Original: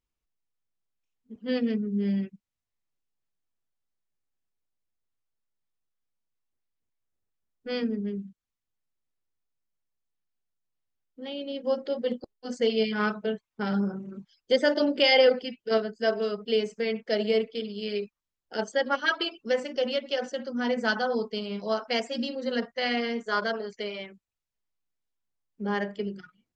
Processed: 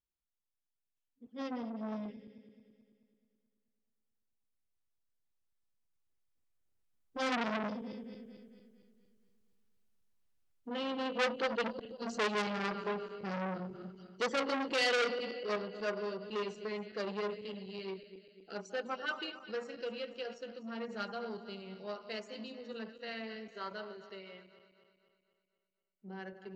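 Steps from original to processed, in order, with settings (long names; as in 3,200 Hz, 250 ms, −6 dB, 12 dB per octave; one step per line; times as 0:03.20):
feedback delay that plays each chunk backwards 116 ms, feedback 72%, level −13.5 dB
source passing by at 0:08.95, 23 m/s, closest 24 metres
saturating transformer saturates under 2,600 Hz
level +8 dB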